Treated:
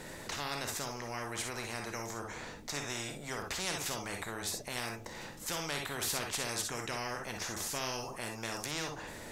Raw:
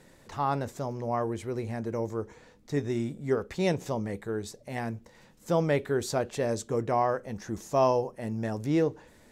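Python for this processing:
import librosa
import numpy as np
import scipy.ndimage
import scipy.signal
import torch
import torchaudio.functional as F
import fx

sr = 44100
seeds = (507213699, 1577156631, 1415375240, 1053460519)

y = fx.rev_gated(x, sr, seeds[0], gate_ms=80, shape='rising', drr_db=4.5)
y = fx.spectral_comp(y, sr, ratio=4.0)
y = y * librosa.db_to_amplitude(-6.5)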